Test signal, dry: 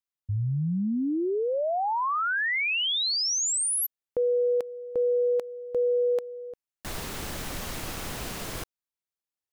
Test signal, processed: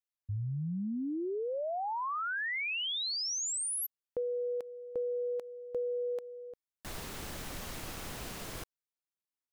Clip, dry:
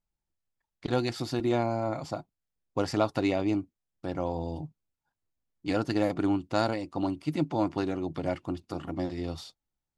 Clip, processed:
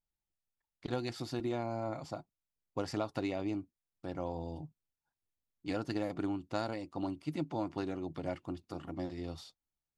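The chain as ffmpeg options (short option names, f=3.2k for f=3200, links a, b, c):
-af "acompressor=threshold=-27dB:ratio=4:attack=94:release=240:knee=1:detection=rms,volume=-7dB"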